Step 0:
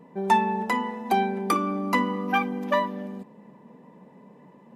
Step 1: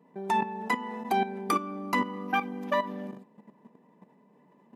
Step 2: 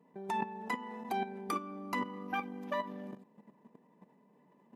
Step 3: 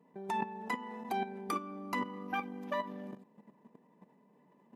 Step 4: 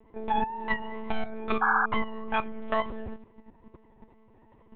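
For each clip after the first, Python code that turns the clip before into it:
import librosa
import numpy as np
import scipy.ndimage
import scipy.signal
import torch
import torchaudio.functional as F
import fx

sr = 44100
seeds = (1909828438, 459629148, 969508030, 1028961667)

y1 = fx.level_steps(x, sr, step_db=12)
y1 = scipy.signal.sosfilt(scipy.signal.butter(2, 160.0, 'highpass', fs=sr, output='sos'), y1)
y1 = fx.notch(y1, sr, hz=520.0, q=12.0)
y2 = fx.level_steps(y1, sr, step_db=11)
y3 = y2
y4 = fx.vibrato(y3, sr, rate_hz=2.2, depth_cents=76.0)
y4 = fx.lpc_monotone(y4, sr, seeds[0], pitch_hz=220.0, order=10)
y4 = fx.spec_paint(y4, sr, seeds[1], shape='noise', start_s=1.61, length_s=0.25, low_hz=740.0, high_hz=1700.0, level_db=-32.0)
y4 = y4 * librosa.db_to_amplitude(8.5)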